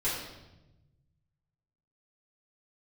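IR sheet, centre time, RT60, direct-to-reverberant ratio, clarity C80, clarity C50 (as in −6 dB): 60 ms, 1.0 s, −11.5 dB, 4.5 dB, 2.0 dB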